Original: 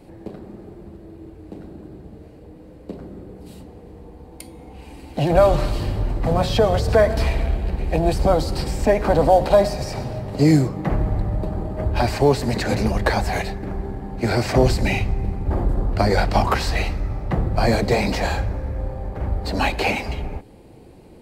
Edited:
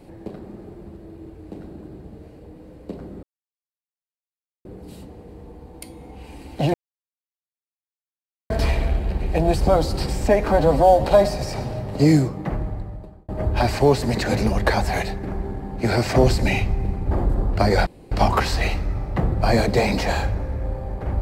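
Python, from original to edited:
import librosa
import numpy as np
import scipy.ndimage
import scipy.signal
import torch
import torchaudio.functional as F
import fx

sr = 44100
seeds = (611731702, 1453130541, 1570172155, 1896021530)

y = fx.edit(x, sr, fx.insert_silence(at_s=3.23, length_s=1.42),
    fx.silence(start_s=5.32, length_s=1.76),
    fx.stretch_span(start_s=9.06, length_s=0.37, factor=1.5),
    fx.fade_out_span(start_s=10.43, length_s=1.25),
    fx.insert_room_tone(at_s=16.26, length_s=0.25), tone=tone)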